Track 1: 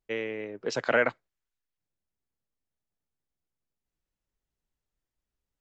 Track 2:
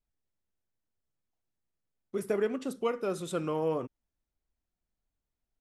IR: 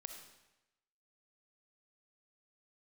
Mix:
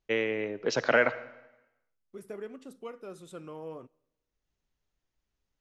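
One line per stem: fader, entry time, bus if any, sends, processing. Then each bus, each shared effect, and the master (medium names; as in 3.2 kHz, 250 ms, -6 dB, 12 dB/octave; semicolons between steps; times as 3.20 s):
+2.5 dB, 0.00 s, send -5.5 dB, elliptic low-pass 6.7 kHz; auto duck -16 dB, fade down 1.65 s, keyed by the second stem
-12.0 dB, 0.00 s, send -17.5 dB, none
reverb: on, RT60 0.95 s, pre-delay 20 ms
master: none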